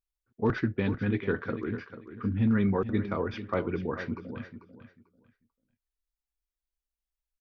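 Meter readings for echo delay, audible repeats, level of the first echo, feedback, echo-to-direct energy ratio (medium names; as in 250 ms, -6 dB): 443 ms, 2, -12.0 dB, 21%, -12.0 dB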